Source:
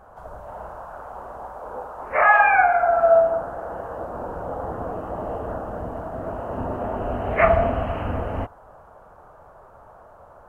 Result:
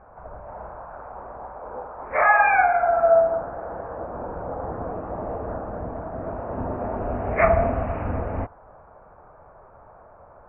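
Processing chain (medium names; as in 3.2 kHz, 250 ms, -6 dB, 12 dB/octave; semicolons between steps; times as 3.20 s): Chebyshev low-pass 2.4 kHz, order 5; peaking EQ 1.4 kHz -2.5 dB 0.77 oct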